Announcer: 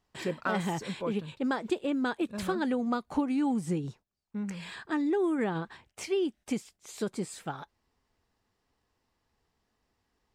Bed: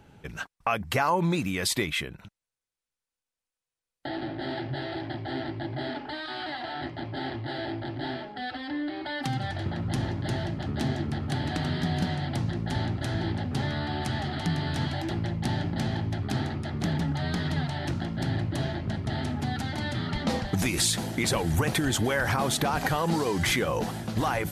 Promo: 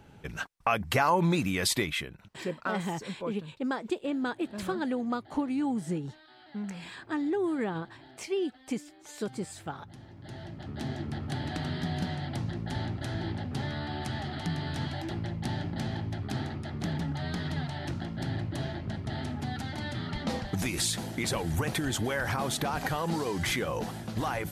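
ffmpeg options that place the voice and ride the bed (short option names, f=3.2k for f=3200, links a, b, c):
-filter_complex "[0:a]adelay=2200,volume=-1.5dB[a];[1:a]volume=16dB,afade=t=out:st=1.65:d=0.99:silence=0.0944061,afade=t=in:st=10.08:d=1.09:silence=0.158489[b];[a][b]amix=inputs=2:normalize=0"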